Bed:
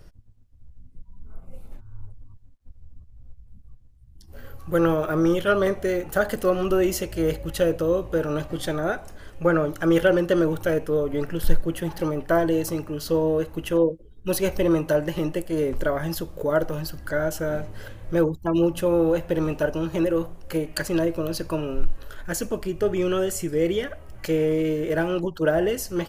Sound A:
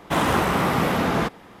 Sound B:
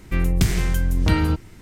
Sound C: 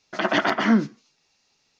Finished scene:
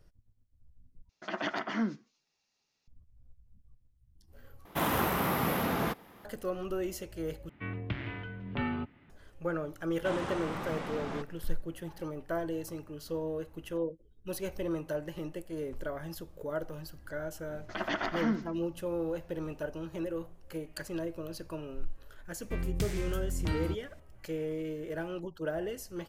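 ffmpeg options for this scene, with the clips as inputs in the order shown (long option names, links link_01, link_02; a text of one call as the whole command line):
ffmpeg -i bed.wav -i cue0.wav -i cue1.wav -i cue2.wav -filter_complex "[3:a]asplit=2[link_01][link_02];[1:a]asplit=2[link_03][link_04];[2:a]asplit=2[link_05][link_06];[0:a]volume=-13.5dB[link_07];[link_03]aexciter=amount=4.7:drive=6.8:freq=11000[link_08];[link_05]highpass=frequency=170:width_type=q:width=0.5412,highpass=frequency=170:width_type=q:width=1.307,lowpass=frequency=3200:width_type=q:width=0.5176,lowpass=frequency=3200:width_type=q:width=0.7071,lowpass=frequency=3200:width_type=q:width=1.932,afreqshift=-68[link_09];[link_04]lowpass=frequency=8800:width=0.5412,lowpass=frequency=8800:width=1.3066[link_10];[link_02]aecho=1:1:87|174|261|348:0.188|0.081|0.0348|0.015[link_11];[link_07]asplit=4[link_12][link_13][link_14][link_15];[link_12]atrim=end=1.094[link_16];[link_01]atrim=end=1.79,asetpts=PTS-STARTPTS,volume=-13dB[link_17];[link_13]atrim=start=2.876:end=4.654[link_18];[link_08]atrim=end=1.6,asetpts=PTS-STARTPTS,volume=-9dB[link_19];[link_14]atrim=start=6.246:end=7.494[link_20];[link_09]atrim=end=1.61,asetpts=PTS-STARTPTS,volume=-10dB[link_21];[link_15]atrim=start=9.096[link_22];[link_10]atrim=end=1.6,asetpts=PTS-STARTPTS,volume=-17dB,afade=type=in:duration=0.004:curve=hsin,afade=type=out:start_time=1.596:duration=0.004:curve=hsin,adelay=438354S[link_23];[link_11]atrim=end=1.79,asetpts=PTS-STARTPTS,volume=-12dB,afade=type=in:duration=0.004:curve=hsin,afade=type=out:start_time=1.786:duration=0.004:curve=hsin,adelay=17560[link_24];[link_06]atrim=end=1.61,asetpts=PTS-STARTPTS,volume=-14dB,afade=type=in:duration=0.004:curve=hsin,afade=type=out:start_time=1.606:duration=0.004:curve=hsin,adelay=22390[link_25];[link_16][link_17]acrossfade=duration=0.004:curve1=hsin:curve2=hsin[link_26];[link_26][link_18]acrossfade=duration=0.004:curve1=hsin:curve2=hsin[link_27];[link_27][link_19]acrossfade=duration=0.004:curve1=hsin:curve2=hsin[link_28];[link_28][link_20]acrossfade=duration=0.004:curve1=hsin:curve2=hsin[link_29];[link_29][link_21]acrossfade=duration=0.004:curve1=hsin:curve2=hsin[link_30];[link_30][link_22]acrossfade=duration=0.004:curve1=hsin:curve2=hsin[link_31];[link_31][link_23][link_24][link_25]amix=inputs=4:normalize=0" out.wav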